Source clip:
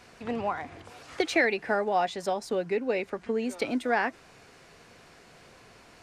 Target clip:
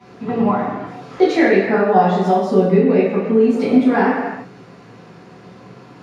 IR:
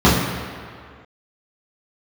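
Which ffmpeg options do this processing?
-filter_complex "[0:a]highpass=f=120:w=0.5412,highpass=f=120:w=1.3066[a];[1:a]atrim=start_sample=2205,afade=t=out:st=0.42:d=0.01,atrim=end_sample=18963[b];[a][b]afir=irnorm=-1:irlink=0,volume=-17dB"

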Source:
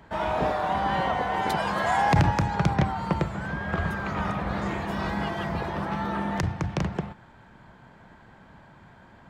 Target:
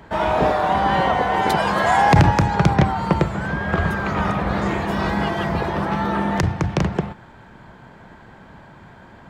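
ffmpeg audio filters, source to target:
-af "equalizer=f=400:t=o:w=0.77:g=2.5,volume=7dB"

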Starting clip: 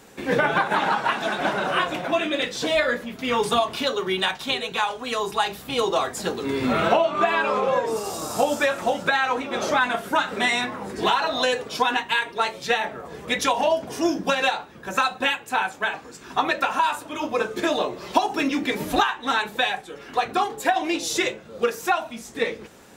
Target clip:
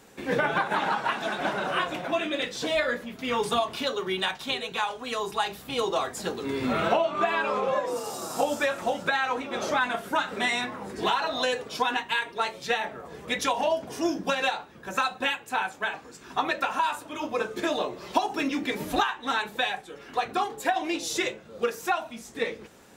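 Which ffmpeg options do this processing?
-filter_complex "[0:a]asettb=1/sr,asplit=3[a][b][c];[a]atrim=end=7.744[d];[b]atrim=start=7.74:end=8.41,asetpts=PTS-STARTPTS,afade=t=in:d=0.004:c=qsin,afade=t=out:st=0.666:d=0.004:c=qsin,afreqshift=43[e];[c]atrim=start=8.406[f];[d][e]acrossfade=d=0.004:c1=hsin:c2=qsin[g];[g][f]acrossfade=d=0.004:c1=qsin:c2=hsin,volume=-4.5dB"

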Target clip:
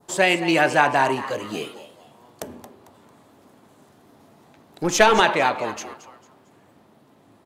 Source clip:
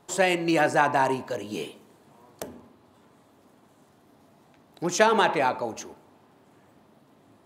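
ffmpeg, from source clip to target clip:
-filter_complex "[0:a]asplit=4[a][b][c][d];[b]adelay=224,afreqshift=150,volume=-14dB[e];[c]adelay=448,afreqshift=300,volume=-23.1dB[f];[d]adelay=672,afreqshift=450,volume=-32.2dB[g];[a][e][f][g]amix=inputs=4:normalize=0,asettb=1/sr,asplit=3[h][i][j];[h]atrim=end=2.494[k];[i]atrim=start=2.49:end=5.2,asetpts=PTS-STARTPTS,afade=t=in:d=0.004:c=qsin,afade=t=out:st=2.706:d=0.004:c=qsin,aeval=exprs='0.596*(cos(1*acos(clip(val(0)/0.596,-1,1)))-cos(1*PI/2))+0.0376*(cos(5*acos(clip(val(0)/0.596,-1,1)))-cos(5*PI/2))+0.0376*(cos(8*acos(clip(val(0)/0.596,-1,1)))-cos(8*PI/2))':c=same[l];[j]atrim=start=5.196[m];[k][l]acrossfade=d=0.004:c1=hsin:c2=qsin[n];[n][m]acrossfade=d=0.004:c1=qsin:c2=hsin,adynamicequalizer=threshold=0.0141:dfrequency=2600:dqfactor=0.89:tfrequency=2600:tqfactor=0.89:attack=5:release=100:ratio=0.375:range=2.5:mode=boostabove:tftype=bell,volume=2.5dB"

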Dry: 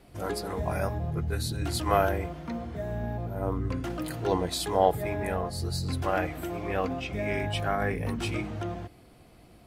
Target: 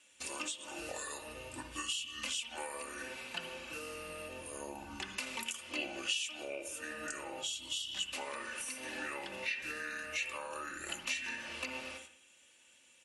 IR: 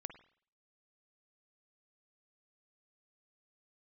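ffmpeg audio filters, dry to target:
-filter_complex "[0:a]agate=range=-11dB:threshold=-45dB:ratio=16:detection=peak,aderivative,asetrate=32667,aresample=44100[a];[1:a]atrim=start_sample=2205,asetrate=41895,aresample=44100[b];[a][b]afir=irnorm=-1:irlink=0,acompressor=threshold=-56dB:ratio=10,lowpass=11k,equalizer=f=2.7k:w=4.3:g=14,aecho=1:1:3.4:0.45,volume=16.5dB"

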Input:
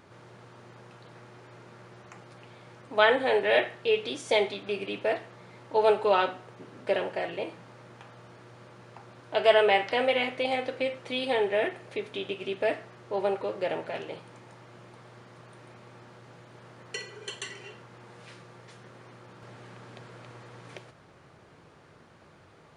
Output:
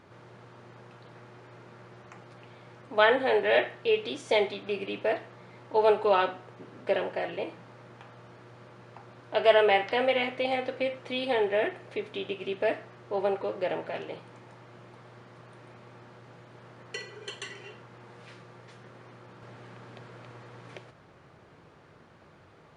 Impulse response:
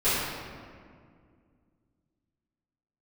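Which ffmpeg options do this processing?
-af "highshelf=f=6.6k:g=-9.5"

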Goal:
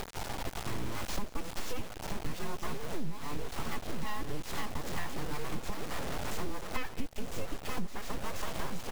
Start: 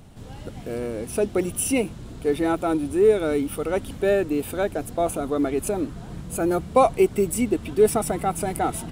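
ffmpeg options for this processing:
-filter_complex "[0:a]afftfilt=real='real(if(between(b,1,1008),(2*floor((b-1)/24)+1)*24-b,b),0)':imag='imag(if(between(b,1,1008),(2*floor((b-1)/24)+1)*24-b,b),0)*if(between(b,1,1008),-1,1)':win_size=2048:overlap=0.75,asplit=2[a][b];[b]adelay=931,lowpass=f=4.9k:p=1,volume=-10dB,asplit=2[c][d];[d]adelay=931,lowpass=f=4.9k:p=1,volume=0.37,asplit=2[e][f];[f]adelay=931,lowpass=f=4.9k:p=1,volume=0.37,asplit=2[g][h];[h]adelay=931,lowpass=f=4.9k:p=1,volume=0.37[i];[c][e][g][i]amix=inputs=4:normalize=0[j];[a][j]amix=inputs=2:normalize=0,acrossover=split=460[k][l];[k]aeval=exprs='val(0)*(1-0.5/2+0.5/2*cos(2*PI*2.3*n/s))':c=same[m];[l]aeval=exprs='val(0)*(1-0.5/2-0.5/2*cos(2*PI*2.3*n/s))':c=same[n];[m][n]amix=inputs=2:normalize=0,acompressor=mode=upward:threshold=-29dB:ratio=2.5,equalizer=f=670:w=0.57:g=-3.5,aeval=exprs='abs(val(0))':c=same,aresample=16000,aresample=44100,acrusher=bits=5:mix=0:aa=0.000001,lowshelf=f=76:g=6.5,acompressor=threshold=-27dB:ratio=6,asplit=2[o][p];[p]aecho=0:1:171:0.0841[q];[o][q]amix=inputs=2:normalize=0,volume=-1.5dB"

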